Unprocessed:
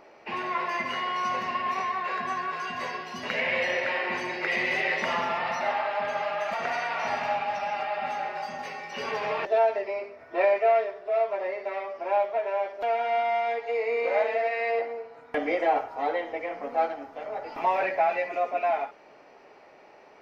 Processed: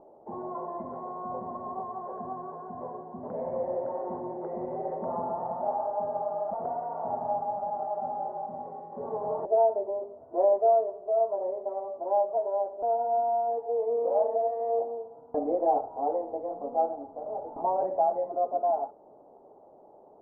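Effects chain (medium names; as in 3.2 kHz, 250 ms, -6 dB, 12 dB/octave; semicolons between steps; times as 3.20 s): steep low-pass 880 Hz 36 dB/octave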